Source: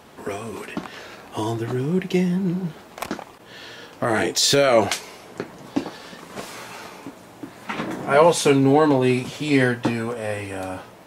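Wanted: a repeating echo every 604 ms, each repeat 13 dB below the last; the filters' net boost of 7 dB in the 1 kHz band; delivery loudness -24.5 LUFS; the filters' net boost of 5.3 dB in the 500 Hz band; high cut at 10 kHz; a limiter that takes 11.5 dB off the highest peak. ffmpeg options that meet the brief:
-af "lowpass=10000,equalizer=f=500:t=o:g=4.5,equalizer=f=1000:t=o:g=7.5,alimiter=limit=0.422:level=0:latency=1,aecho=1:1:604|1208|1812:0.224|0.0493|0.0108,volume=0.668"

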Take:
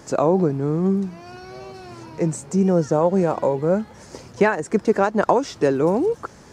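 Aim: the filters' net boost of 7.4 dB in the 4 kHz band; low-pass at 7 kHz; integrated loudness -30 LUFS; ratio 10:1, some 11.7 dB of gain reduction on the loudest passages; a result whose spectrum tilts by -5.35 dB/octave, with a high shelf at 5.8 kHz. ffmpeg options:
-af "lowpass=7000,equalizer=f=4000:t=o:g=7.5,highshelf=f=5800:g=6.5,acompressor=threshold=0.0631:ratio=10,volume=1.06"

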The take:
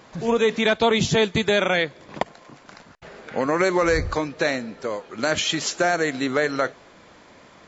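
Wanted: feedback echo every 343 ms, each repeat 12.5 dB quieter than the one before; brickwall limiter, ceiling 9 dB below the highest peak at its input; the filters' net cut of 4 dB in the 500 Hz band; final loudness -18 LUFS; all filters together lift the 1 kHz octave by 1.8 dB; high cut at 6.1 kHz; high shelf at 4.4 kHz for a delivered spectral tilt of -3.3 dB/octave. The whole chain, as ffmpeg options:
-af "lowpass=6100,equalizer=f=500:t=o:g=-6,equalizer=f=1000:t=o:g=4,highshelf=f=4400:g=7.5,alimiter=limit=0.188:level=0:latency=1,aecho=1:1:343|686|1029:0.237|0.0569|0.0137,volume=2.51"

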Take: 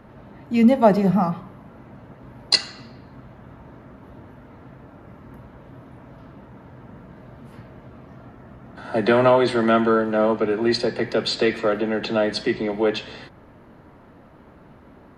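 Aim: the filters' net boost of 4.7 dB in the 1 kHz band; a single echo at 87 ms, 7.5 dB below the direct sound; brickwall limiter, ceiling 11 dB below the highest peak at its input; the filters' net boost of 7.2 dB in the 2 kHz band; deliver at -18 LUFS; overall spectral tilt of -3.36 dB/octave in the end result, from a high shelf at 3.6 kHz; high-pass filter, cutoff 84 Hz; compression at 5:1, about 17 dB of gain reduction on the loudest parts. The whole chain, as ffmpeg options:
-af "highpass=84,equalizer=f=1000:t=o:g=4,equalizer=f=2000:t=o:g=6,highshelf=f=3600:g=6.5,acompressor=threshold=0.0501:ratio=5,alimiter=limit=0.0891:level=0:latency=1,aecho=1:1:87:0.422,volume=5.96"

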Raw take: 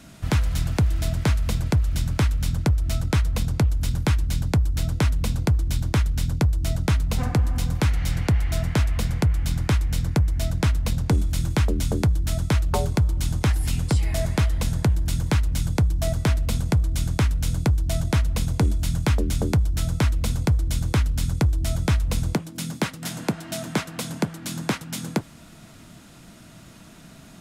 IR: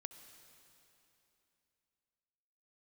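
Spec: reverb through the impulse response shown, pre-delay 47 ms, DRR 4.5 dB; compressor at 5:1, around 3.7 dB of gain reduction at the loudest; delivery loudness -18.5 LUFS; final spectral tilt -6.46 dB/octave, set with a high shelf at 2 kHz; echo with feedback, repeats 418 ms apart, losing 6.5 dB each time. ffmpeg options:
-filter_complex "[0:a]highshelf=f=2000:g=-5.5,acompressor=threshold=0.1:ratio=5,aecho=1:1:418|836|1254|1672|2090|2508:0.473|0.222|0.105|0.0491|0.0231|0.0109,asplit=2[s0][s1];[1:a]atrim=start_sample=2205,adelay=47[s2];[s1][s2]afir=irnorm=-1:irlink=0,volume=1[s3];[s0][s3]amix=inputs=2:normalize=0,volume=2"

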